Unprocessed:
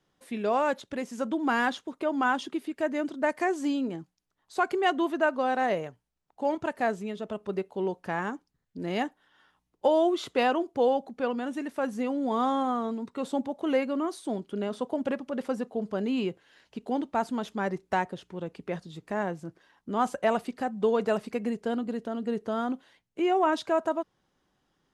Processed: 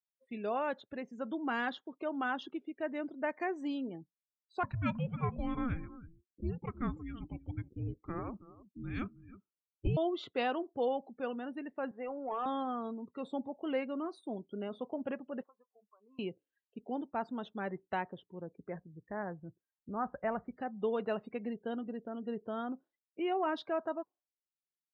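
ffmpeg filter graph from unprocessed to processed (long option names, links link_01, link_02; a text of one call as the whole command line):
ffmpeg -i in.wav -filter_complex "[0:a]asettb=1/sr,asplit=3[link_01][link_02][link_03];[link_01]atrim=end=4.634[link_04];[link_02]atrim=start=4.63:end=9.97,asetpts=PTS-STARTPTS,afade=type=in:duration=0.004:curve=qsin,afade=type=out:start_time=5.336:duration=0.004:curve=qsin,afreqshift=-490,aecho=1:1:320:0.158,atrim=end_sample=235494[link_05];[link_03]atrim=start=9.966[link_06];[link_04][link_05]acrossfade=duration=0.004:curve1=hsin:curve2=qsin[link_07];[link_07][link_06]acrossfade=duration=0.004:curve1=qsin:curve2=hsin,asettb=1/sr,asplit=3[link_08][link_09][link_10];[link_08]atrim=end=11.914[link_11];[link_09]atrim=start=11.91:end=12.46,asetpts=PTS-STARTPTS,afade=type=in:duration=0.004:curve=qsin,afade=type=out:start_time=0.546:duration=0.004:curve=qsin,highpass=420,lowpass=2900,asplit=2[link_12][link_13];[link_13]highpass=frequency=720:poles=1,volume=14dB,asoftclip=type=tanh:threshold=-17dB[link_14];[link_12][link_14]amix=inputs=2:normalize=0,lowpass=frequency=1000:poles=1,volume=-6dB[link_15];[link_10]atrim=start=12.456[link_16];[link_11][link_15]acrossfade=duration=0.004:curve1=hsin:curve2=qsin[link_17];[link_17][link_16]acrossfade=duration=0.004:curve1=qsin:curve2=hsin,asettb=1/sr,asplit=3[link_18][link_19][link_20];[link_18]atrim=end=15.434[link_21];[link_19]atrim=start=15.43:end=16.19,asetpts=PTS-STARTPTS,afade=type=in:duration=0.004:curve=qsin,afade=type=out:start_time=0.756:duration=0.004:curve=qsin,bandpass=frequency=1100:width_type=q:width=6.1,acompressor=threshold=-49dB:ratio=4:attack=3.2:release=140:knee=1:detection=peak[link_22];[link_20]atrim=start=16.186[link_23];[link_21][link_22]acrossfade=duration=0.004:curve1=hsin:curve2=qsin[link_24];[link_24][link_23]acrossfade=duration=0.004:curve1=qsin:curve2=hsin,asettb=1/sr,asplit=3[link_25][link_26][link_27];[link_25]atrim=end=18.414[link_28];[link_26]atrim=start=18.41:end=20.57,asetpts=PTS-STARTPTS,afade=type=in:duration=0.004:curve=qsin,afade=type=out:start_time=2.156:duration=0.004:curve=qsin,lowpass=frequency=2100:width=0.5412,lowpass=frequency=2100:width=1.3066,asubboost=boost=8:cutoff=130[link_29];[link_27]atrim=start=20.566[link_30];[link_28][link_29]acrossfade=duration=0.004:curve1=hsin:curve2=qsin[link_31];[link_31][link_30]acrossfade=duration=0.004:curve1=qsin:curve2=hsin,afftdn=noise_reduction=34:noise_floor=-45,highshelf=frequency=5000:width_type=q:width=1.5:gain=-7.5,bandreject=frequency=990:width=20,volume=-8.5dB" out.wav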